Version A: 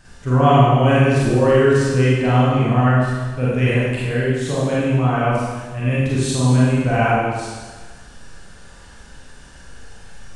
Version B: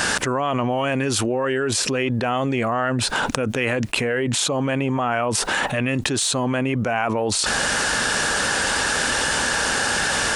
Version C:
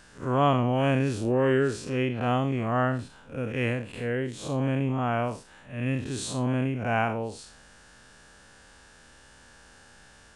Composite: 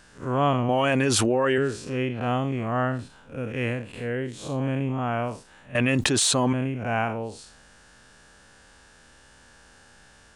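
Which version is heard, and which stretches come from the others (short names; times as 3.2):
C
0.69–1.58 from B
5.75–6.53 from B
not used: A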